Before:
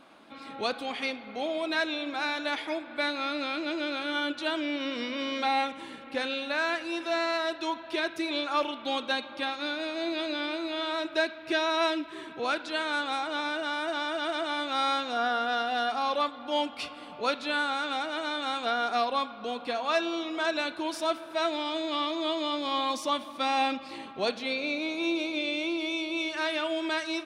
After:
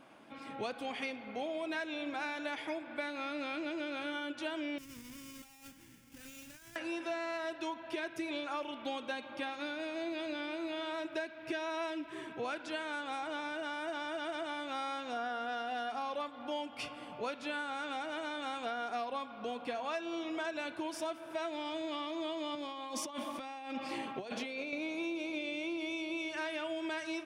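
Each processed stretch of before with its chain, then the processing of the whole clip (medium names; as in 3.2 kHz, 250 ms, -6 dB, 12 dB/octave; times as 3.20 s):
4.78–6.76 s: square wave that keeps the level + amplifier tone stack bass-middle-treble 6-0-2 + compressor with a negative ratio -48 dBFS, ratio -0.5
22.55–24.73 s: high-pass 170 Hz + compressor with a negative ratio -37 dBFS
whole clip: graphic EQ with 31 bands 125 Hz +9 dB, 1.25 kHz -4 dB, 4 kHz -10 dB; compression, threshold -32 dBFS; trim -2.5 dB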